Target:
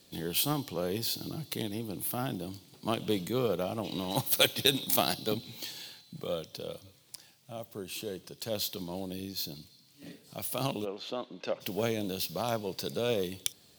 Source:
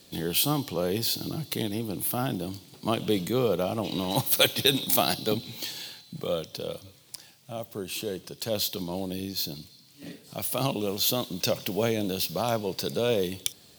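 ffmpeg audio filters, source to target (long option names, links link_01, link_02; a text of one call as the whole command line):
ffmpeg -i in.wav -filter_complex "[0:a]asettb=1/sr,asplit=3[link_01][link_02][link_03];[link_01]atrim=end=8.454[link_04];[link_02]atrim=start=8.45:end=9,asetpts=PTS-STARTPTS,afade=type=in:duration=0.004:curve=qsin,afade=type=out:start_time=0.546:duration=0.004:curve=qsin,aeval=exprs='val(0)*gte(abs(val(0)),0.00355)':channel_layout=same[link_05];[link_03]atrim=start=8.996[link_06];[link_04][link_05]acrossfade=duration=0.004:curve1=hsin:curve2=qsin[link_07];[link_07][link_06]acrossfade=duration=0.004:curve1=qsin:curve2=hsin,aeval=exprs='0.596*(cos(1*acos(clip(val(0)/0.596,-1,1)))-cos(1*PI/2))+0.0266*(cos(7*acos(clip(val(0)/0.596,-1,1)))-cos(7*PI/2))':channel_layout=same,asplit=3[link_08][link_09][link_10];[link_08]afade=type=out:start_time=10.84:duration=0.02[link_11];[link_09]highpass=300,lowpass=2200,afade=type=in:start_time=10.84:duration=0.02,afade=type=out:start_time=11.6:duration=0.02[link_12];[link_10]afade=type=in:start_time=11.6:duration=0.02[link_13];[link_11][link_12][link_13]amix=inputs=3:normalize=0,volume=-2.5dB" out.wav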